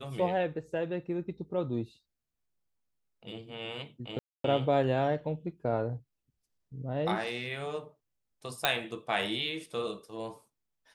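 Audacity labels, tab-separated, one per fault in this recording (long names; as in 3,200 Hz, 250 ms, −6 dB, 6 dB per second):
4.190000	4.440000	drop-out 253 ms
8.650000	8.650000	click −9 dBFS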